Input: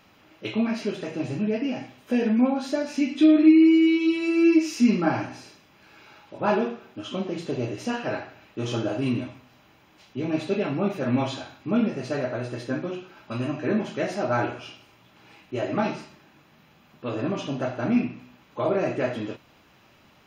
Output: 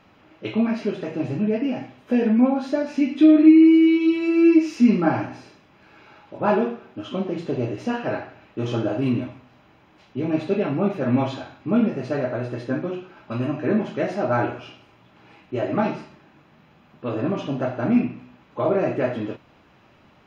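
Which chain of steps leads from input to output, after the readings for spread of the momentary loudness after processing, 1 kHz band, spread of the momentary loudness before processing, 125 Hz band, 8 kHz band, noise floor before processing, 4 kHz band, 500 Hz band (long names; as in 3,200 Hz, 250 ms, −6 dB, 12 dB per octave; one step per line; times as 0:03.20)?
16 LU, +2.5 dB, 16 LU, +3.5 dB, can't be measured, −57 dBFS, −2.5 dB, +3.0 dB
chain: low-pass filter 1,900 Hz 6 dB per octave
level +3.5 dB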